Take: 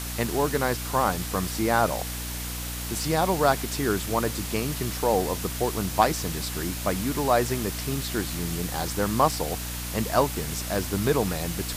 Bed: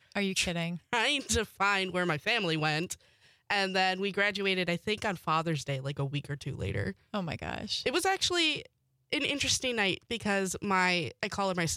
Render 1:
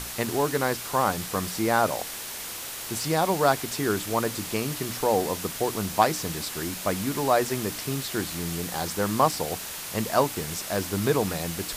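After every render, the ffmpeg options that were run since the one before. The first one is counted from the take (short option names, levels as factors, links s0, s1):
-af "bandreject=f=60:t=h:w=6,bandreject=f=120:t=h:w=6,bandreject=f=180:t=h:w=6,bandreject=f=240:t=h:w=6,bandreject=f=300:t=h:w=6"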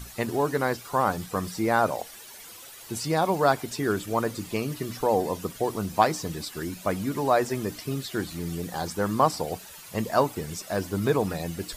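-af "afftdn=nr=13:nf=-36"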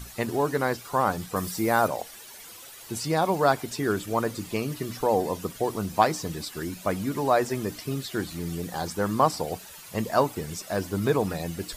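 -filter_complex "[0:a]asettb=1/sr,asplit=3[s0][s1][s2];[s0]atrim=end=1.364[s3];[s1]atrim=start=1.36:end=1.88,asetpts=PTS-STARTPTS,afade=t=in:d=0.004:c=qsin,afade=t=out:st=0.516:d=0.004:c=qsin,highshelf=f=9100:g=11[s4];[s2]atrim=start=1.876[s5];[s3][s4]acrossfade=d=0.004:c1=hsin:c2=qsin[s6];[s6][s5]acrossfade=d=0.004:c1=qsin:c2=hsin"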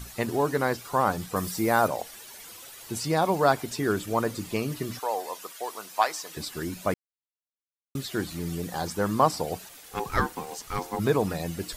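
-filter_complex "[0:a]asettb=1/sr,asplit=3[s0][s1][s2];[s0]atrim=end=4.994[s3];[s1]atrim=start=4.99:end=6.37,asetpts=PTS-STARTPTS,afade=t=in:d=0.004:c=qsin,afade=t=out:st=1.376:d=0.004:c=qsin,highpass=800[s4];[s2]atrim=start=6.366[s5];[s3][s4]acrossfade=d=0.004:c1=hsin:c2=qsin[s6];[s6][s5]acrossfade=d=0.004:c1=qsin:c2=hsin,asplit=3[s7][s8][s9];[s7]afade=t=out:st=9.68:d=0.02[s10];[s8]aeval=exprs='val(0)*sin(2*PI*620*n/s)':c=same,afade=t=in:st=9.68:d=0.02,afade=t=out:st=10.98:d=0.02[s11];[s9]afade=t=in:st=10.98:d=0.02[s12];[s10][s11][s12]amix=inputs=3:normalize=0,asplit=3[s13][s14][s15];[s13]atrim=end=6.94,asetpts=PTS-STARTPTS,afade=t=out:st=6.936:d=0.004:c=hsin[s16];[s14]atrim=start=6.94:end=7.95,asetpts=PTS-STARTPTS,volume=0[s17];[s15]atrim=start=7.95,asetpts=PTS-STARTPTS,afade=t=in:d=0.004:c=hsin[s18];[s16][s17][s18]concat=n=3:v=0:a=1"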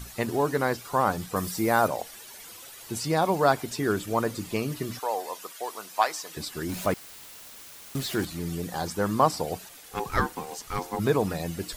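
-filter_complex "[0:a]asettb=1/sr,asplit=3[s0][s1][s2];[s0]atrim=end=6.694[s3];[s1]atrim=start=6.69:end=8.25,asetpts=PTS-STARTPTS,afade=t=in:d=0.004:c=qsin,afade=t=out:st=1.556:d=0.004:c=qsin,aeval=exprs='val(0)+0.5*0.02*sgn(val(0))':c=same[s4];[s2]atrim=start=8.246[s5];[s3][s4]acrossfade=d=0.004:c1=hsin:c2=qsin[s6];[s6][s5]acrossfade=d=0.004:c1=qsin:c2=hsin"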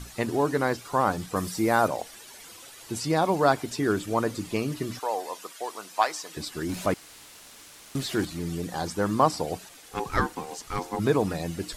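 -af "lowpass=11000,equalizer=f=300:t=o:w=0.38:g=3.5"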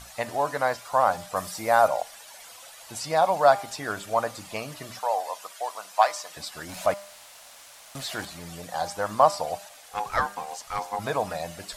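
-af "lowshelf=f=480:t=q:w=3:g=-8.5,bandreject=f=200.4:t=h:w=4,bandreject=f=400.8:t=h:w=4,bandreject=f=601.2:t=h:w=4,bandreject=f=801.6:t=h:w=4,bandreject=f=1002:t=h:w=4,bandreject=f=1202.4:t=h:w=4,bandreject=f=1402.8:t=h:w=4,bandreject=f=1603.2:t=h:w=4,bandreject=f=1803.6:t=h:w=4,bandreject=f=2004:t=h:w=4,bandreject=f=2204.4:t=h:w=4,bandreject=f=2404.8:t=h:w=4,bandreject=f=2605.2:t=h:w=4,bandreject=f=2805.6:t=h:w=4,bandreject=f=3006:t=h:w=4,bandreject=f=3206.4:t=h:w=4,bandreject=f=3406.8:t=h:w=4,bandreject=f=3607.2:t=h:w=4,bandreject=f=3807.6:t=h:w=4,bandreject=f=4008:t=h:w=4,bandreject=f=4208.4:t=h:w=4,bandreject=f=4408.8:t=h:w=4,bandreject=f=4609.2:t=h:w=4,bandreject=f=4809.6:t=h:w=4,bandreject=f=5010:t=h:w=4,bandreject=f=5210.4:t=h:w=4,bandreject=f=5410.8:t=h:w=4,bandreject=f=5611.2:t=h:w=4,bandreject=f=5811.6:t=h:w=4"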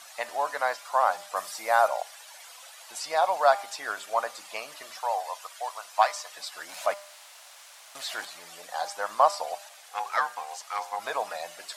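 -af "highpass=690,highshelf=f=9100:g=-4.5"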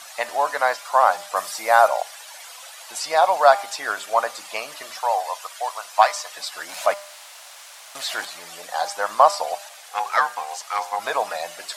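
-af "volume=2.24,alimiter=limit=0.891:level=0:latency=1"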